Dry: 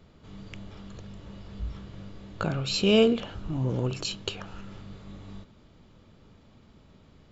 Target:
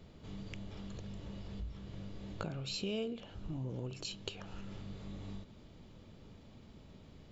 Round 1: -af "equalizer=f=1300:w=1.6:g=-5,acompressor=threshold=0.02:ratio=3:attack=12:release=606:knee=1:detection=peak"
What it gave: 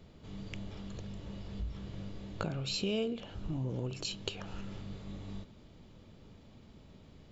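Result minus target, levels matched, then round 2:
compression: peak gain reduction -4.5 dB
-af "equalizer=f=1300:w=1.6:g=-5,acompressor=threshold=0.00944:ratio=3:attack=12:release=606:knee=1:detection=peak"

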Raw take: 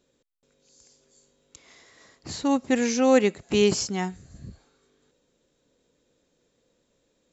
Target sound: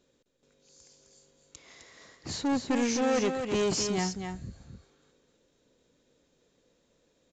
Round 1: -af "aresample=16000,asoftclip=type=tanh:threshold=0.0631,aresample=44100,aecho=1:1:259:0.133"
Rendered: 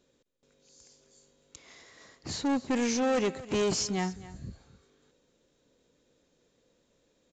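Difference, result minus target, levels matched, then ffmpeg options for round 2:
echo-to-direct -11 dB
-af "aresample=16000,asoftclip=type=tanh:threshold=0.0631,aresample=44100,aecho=1:1:259:0.473"

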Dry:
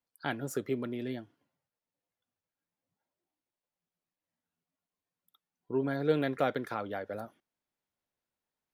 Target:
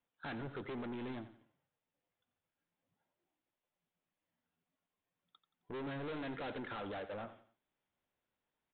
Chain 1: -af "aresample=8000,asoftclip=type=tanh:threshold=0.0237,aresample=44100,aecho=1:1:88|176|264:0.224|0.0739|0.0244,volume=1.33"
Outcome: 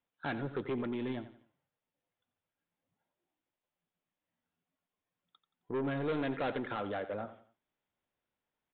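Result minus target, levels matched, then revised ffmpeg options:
saturation: distortion -5 dB
-af "aresample=8000,asoftclip=type=tanh:threshold=0.00708,aresample=44100,aecho=1:1:88|176|264:0.224|0.0739|0.0244,volume=1.33"

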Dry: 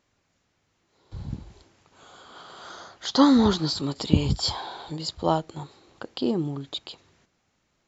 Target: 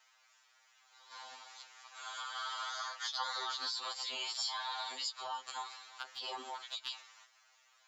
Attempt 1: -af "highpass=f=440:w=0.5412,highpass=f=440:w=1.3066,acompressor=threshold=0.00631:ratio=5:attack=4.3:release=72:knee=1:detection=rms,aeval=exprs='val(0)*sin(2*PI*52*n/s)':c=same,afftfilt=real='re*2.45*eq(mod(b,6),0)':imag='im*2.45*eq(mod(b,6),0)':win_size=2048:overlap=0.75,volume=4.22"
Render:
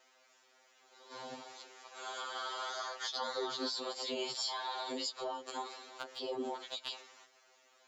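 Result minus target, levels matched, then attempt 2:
500 Hz band +13.0 dB
-af "highpass=f=900:w=0.5412,highpass=f=900:w=1.3066,acompressor=threshold=0.00631:ratio=5:attack=4.3:release=72:knee=1:detection=rms,aeval=exprs='val(0)*sin(2*PI*52*n/s)':c=same,afftfilt=real='re*2.45*eq(mod(b,6),0)':imag='im*2.45*eq(mod(b,6),0)':win_size=2048:overlap=0.75,volume=4.22"

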